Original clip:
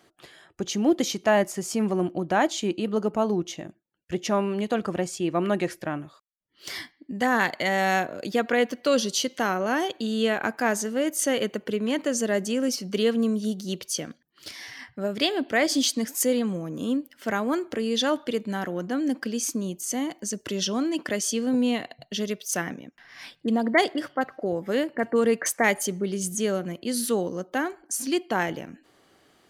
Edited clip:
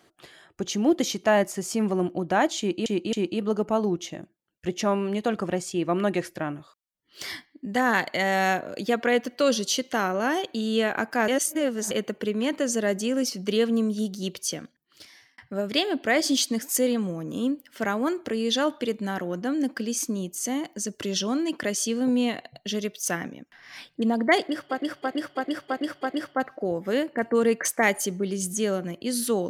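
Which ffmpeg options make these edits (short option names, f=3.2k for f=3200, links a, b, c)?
-filter_complex "[0:a]asplit=11[a][b][c][d][e][f][g][h][i][j][k];[a]atrim=end=2.862[l];[b]atrim=start=2.588:end=2.862[m];[c]atrim=start=2.588:end=10.742[n];[d]atrim=start=10.738:end=11.372,asetpts=PTS-STARTPTS,areverse[o];[e]atrim=start=11.368:end=14.84,asetpts=PTS-STARTPTS,afade=t=out:st=2.582:d=0.89[p];[f]atrim=start=14.84:end=24.31,asetpts=PTS-STARTPTS,afade=t=in:d=0.004:c=hsin[q];[g]atrim=start=23.82:end=24.31[r];[h]atrim=start=23.82:end=24.31[s];[i]atrim=start=23.82:end=24.31[t];[j]atrim=start=23.82:end=24.31[u];[k]atrim=start=23.82[v];[l][m]acrossfade=d=0.004:c1=hsin:c2=hsin[w];[w][n]acrossfade=d=0.004:c1=hsin:c2=hsin[x];[x][o]acrossfade=d=0.004:c1=hsin:c2=hsin[y];[p][q]concat=n=2:v=0:a=1[z];[y][z]acrossfade=d=0.004:c1=hsin:c2=hsin[aa];[aa][r]acrossfade=d=0.16:c1=tri:c2=tri[ab];[ab][s]acrossfade=d=0.16:c1=tri:c2=tri[ac];[ac][t]acrossfade=d=0.16:c1=tri:c2=tri[ad];[ad][u]acrossfade=d=0.16:c1=tri:c2=tri[ae];[ae][v]acrossfade=d=0.16:c1=tri:c2=tri"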